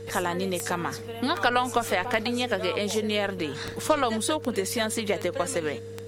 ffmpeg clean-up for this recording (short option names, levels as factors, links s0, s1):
-af "adeclick=t=4,bandreject=f=101.1:t=h:w=4,bandreject=f=202.2:t=h:w=4,bandreject=f=303.3:t=h:w=4,bandreject=f=404.4:t=h:w=4,bandreject=f=460:w=30"